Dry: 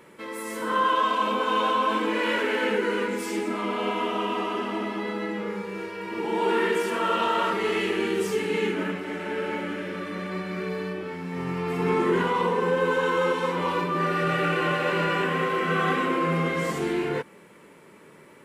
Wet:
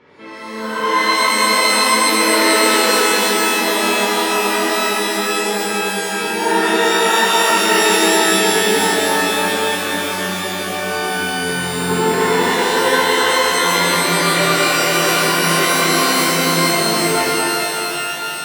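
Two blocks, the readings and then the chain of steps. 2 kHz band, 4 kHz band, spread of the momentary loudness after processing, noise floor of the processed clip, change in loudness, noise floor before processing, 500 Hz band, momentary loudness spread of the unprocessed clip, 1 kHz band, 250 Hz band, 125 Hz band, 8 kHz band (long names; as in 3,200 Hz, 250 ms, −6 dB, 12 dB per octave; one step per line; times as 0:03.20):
+13.0 dB, +18.5 dB, 7 LU, −24 dBFS, +11.5 dB, −51 dBFS, +8.0 dB, 9 LU, +9.5 dB, +7.5 dB, +5.5 dB, +27.0 dB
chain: Butterworth low-pass 5,500 Hz
reverb with rising layers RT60 3.3 s, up +12 semitones, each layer −2 dB, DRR −8 dB
level −1.5 dB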